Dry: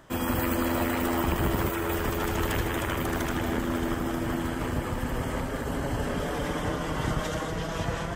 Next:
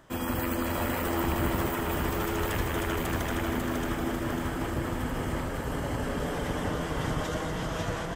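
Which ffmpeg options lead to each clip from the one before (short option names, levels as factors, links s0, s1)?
-af "aecho=1:1:548|1096|1644|2192|2740:0.631|0.252|0.101|0.0404|0.0162,volume=0.708"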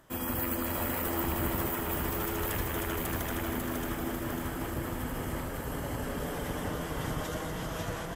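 -af "equalizer=f=13000:t=o:w=0.63:g=13,volume=0.631"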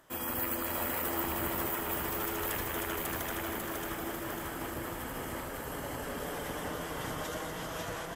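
-af "lowshelf=f=250:g=-8.5,bandreject=f=50:t=h:w=6,bandreject=f=100:t=h:w=6,bandreject=f=150:t=h:w=6,bandreject=f=200:t=h:w=6,bandreject=f=250:t=h:w=6"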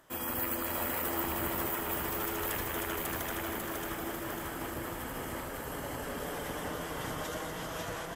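-af anull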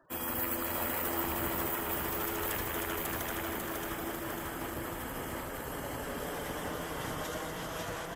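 -filter_complex "[0:a]afftfilt=real='re*gte(hypot(re,im),0.00158)':imag='im*gte(hypot(re,im),0.00158)':win_size=1024:overlap=0.75,acrossover=split=450|2700[s0][s1][s2];[s0]acrusher=bits=5:mode=log:mix=0:aa=0.000001[s3];[s3][s1][s2]amix=inputs=3:normalize=0"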